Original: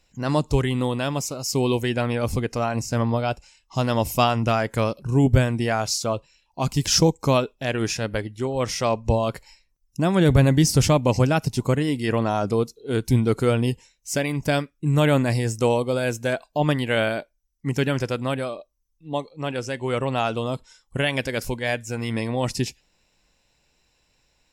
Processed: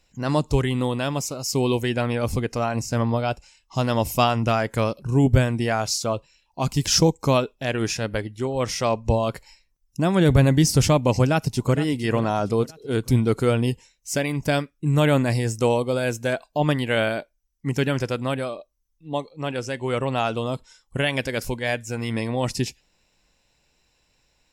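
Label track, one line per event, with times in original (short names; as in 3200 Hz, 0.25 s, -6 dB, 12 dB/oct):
11.210000	11.780000	echo throw 0.46 s, feedback 45%, level -14 dB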